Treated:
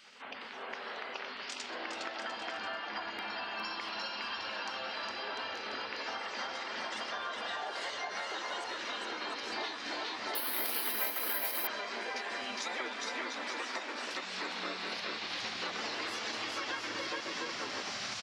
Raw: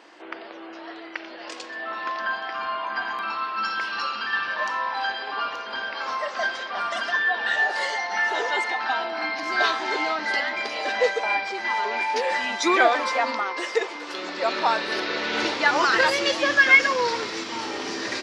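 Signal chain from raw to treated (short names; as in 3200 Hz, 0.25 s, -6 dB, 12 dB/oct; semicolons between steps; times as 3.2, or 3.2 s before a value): bouncing-ball echo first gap 0.41 s, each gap 0.7×, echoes 5; spectral gate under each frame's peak -10 dB weak; compressor 6:1, threshold -36 dBFS, peak gain reduction 17 dB; 10.35–11.67 careless resampling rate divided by 3×, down none, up zero stuff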